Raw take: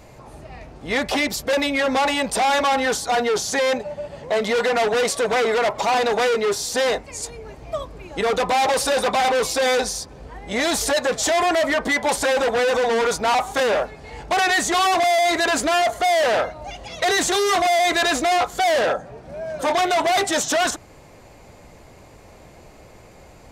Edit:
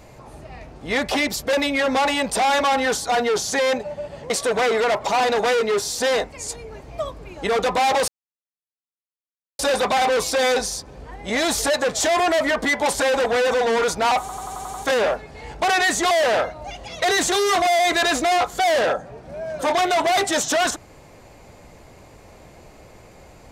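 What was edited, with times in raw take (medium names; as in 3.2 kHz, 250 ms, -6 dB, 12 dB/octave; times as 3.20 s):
4.30–5.04 s: delete
8.82 s: insert silence 1.51 s
13.43 s: stutter 0.09 s, 7 plays
14.80–16.11 s: delete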